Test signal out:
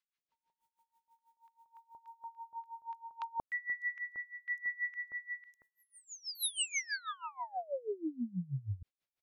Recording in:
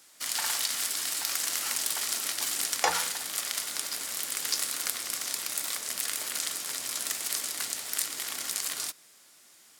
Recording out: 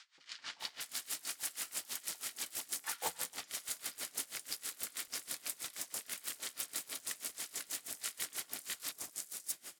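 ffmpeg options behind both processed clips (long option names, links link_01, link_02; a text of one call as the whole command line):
ffmpeg -i in.wav -filter_complex "[0:a]areverse,acompressor=threshold=-44dB:ratio=8,areverse,asoftclip=type=hard:threshold=-32dB,acrossover=split=1100|5200[link_01][link_02][link_03];[link_01]adelay=180[link_04];[link_03]adelay=600[link_05];[link_04][link_02][link_05]amix=inputs=3:normalize=0,aeval=exprs='val(0)*pow(10,-23*(0.5-0.5*cos(2*PI*6.2*n/s))/20)':channel_layout=same,volume=12dB" out.wav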